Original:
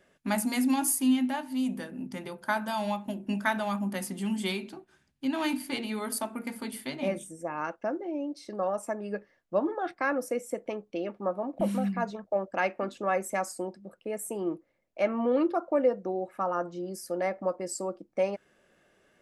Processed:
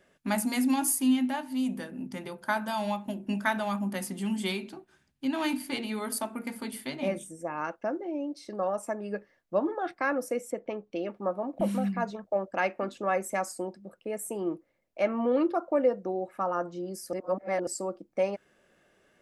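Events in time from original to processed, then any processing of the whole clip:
10.51–10.92 s: distance through air 120 m
17.13–17.67 s: reverse

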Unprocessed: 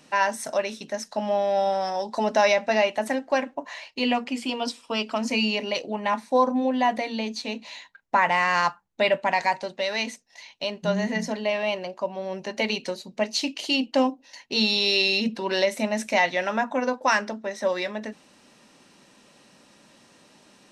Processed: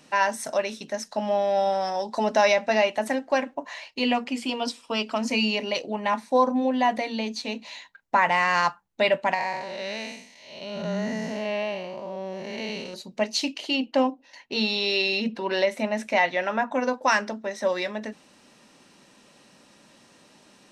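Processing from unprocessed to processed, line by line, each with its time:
9.34–12.94 s: spectral blur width 258 ms
13.58–16.72 s: tone controls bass -3 dB, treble -9 dB

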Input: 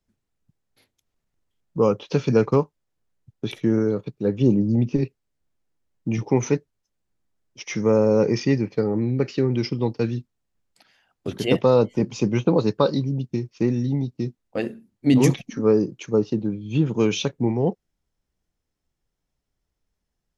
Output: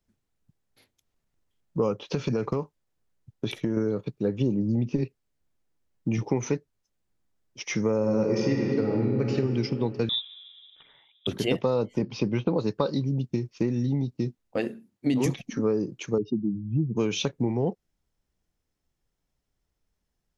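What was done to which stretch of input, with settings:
2.00–3.77 s: compression, threshold -20 dBFS
7.97–9.32 s: reverb throw, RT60 2.6 s, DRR 0.5 dB
10.09–11.27 s: frequency inversion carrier 3.7 kHz
12.02–12.59 s: steep low-pass 5.4 kHz 48 dB/octave
14.57–15.26 s: high-pass 150 Hz 6 dB/octave
16.18–16.97 s: spectral contrast enhancement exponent 2.4
whole clip: compression 4:1, threshold -22 dBFS

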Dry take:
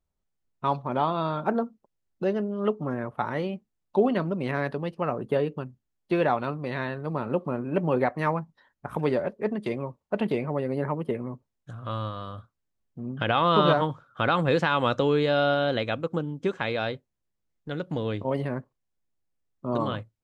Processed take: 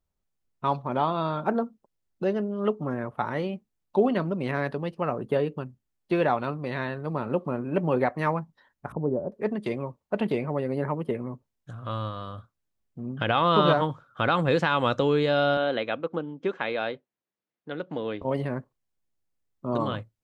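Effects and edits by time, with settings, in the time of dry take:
8.92–9.32 s: Gaussian low-pass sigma 11 samples
15.57–18.22 s: band-pass 240–3600 Hz

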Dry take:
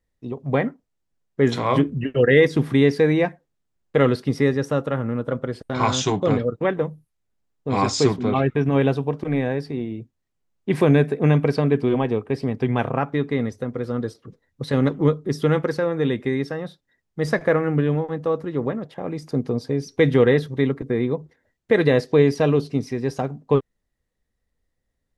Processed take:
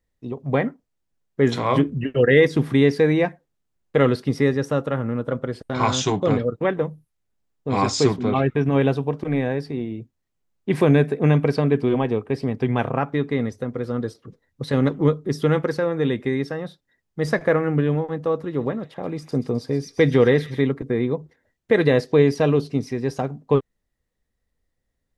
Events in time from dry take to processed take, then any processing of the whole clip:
18.30–20.61 s: feedback echo behind a high-pass 130 ms, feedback 70%, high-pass 2.8 kHz, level -9.5 dB

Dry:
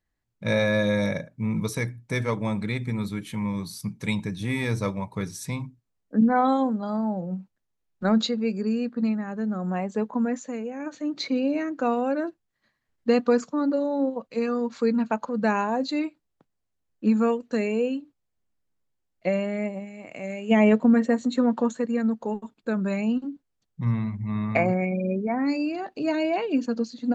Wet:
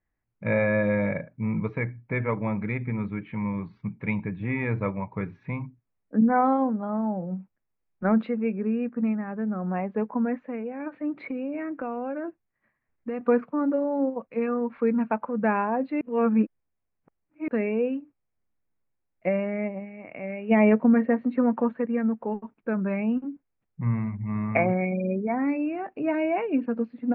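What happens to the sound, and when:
11.22–13.21 s: compression, threshold -27 dBFS
16.01–17.48 s: reverse
whole clip: elliptic low-pass 2.4 kHz, stop band 80 dB

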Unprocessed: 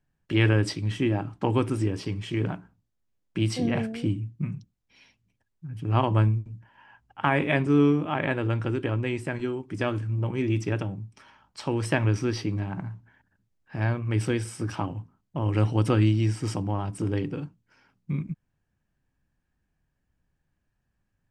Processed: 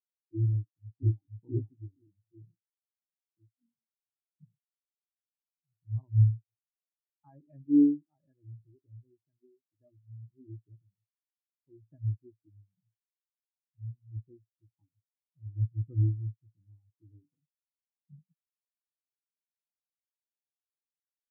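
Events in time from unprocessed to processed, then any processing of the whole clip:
0.54–1.41 s: echo throw 480 ms, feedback 45%, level 0 dB
2.55–4.31 s: fade out
whole clip: treble shelf 2 kHz -5 dB; spectral contrast expander 4:1; trim -6.5 dB

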